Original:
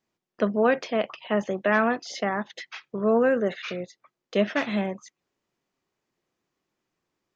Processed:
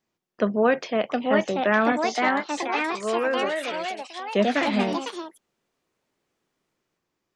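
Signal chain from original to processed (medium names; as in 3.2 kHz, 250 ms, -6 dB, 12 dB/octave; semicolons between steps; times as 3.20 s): 1.92–4.35 s: high-pass 780 Hz 6 dB/octave; ever faster or slower copies 784 ms, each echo +3 st, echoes 3; trim +1 dB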